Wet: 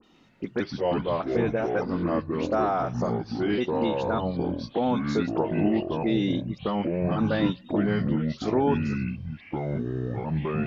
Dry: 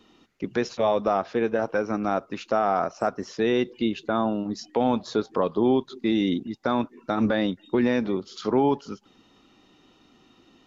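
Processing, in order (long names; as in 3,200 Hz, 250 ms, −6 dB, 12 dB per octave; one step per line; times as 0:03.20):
pitch shifter gated in a rhythm −3 semitones, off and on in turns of 596 ms
delay with pitch and tempo change per echo 120 ms, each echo −6 semitones, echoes 2
all-pass dispersion highs, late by 42 ms, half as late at 2,600 Hz
level −2.5 dB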